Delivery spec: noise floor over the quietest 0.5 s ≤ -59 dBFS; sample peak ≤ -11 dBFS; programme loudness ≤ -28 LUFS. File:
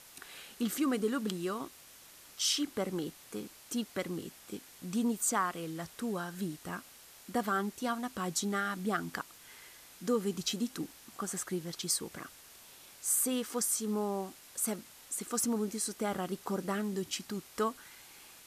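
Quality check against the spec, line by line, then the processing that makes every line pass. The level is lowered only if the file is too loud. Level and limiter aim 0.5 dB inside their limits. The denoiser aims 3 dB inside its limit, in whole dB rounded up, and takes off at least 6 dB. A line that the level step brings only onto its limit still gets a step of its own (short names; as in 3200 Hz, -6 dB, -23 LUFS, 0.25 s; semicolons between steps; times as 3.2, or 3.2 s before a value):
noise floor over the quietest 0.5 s -55 dBFS: fail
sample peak -17.0 dBFS: OK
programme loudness -34.5 LUFS: OK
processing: denoiser 7 dB, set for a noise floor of -55 dBFS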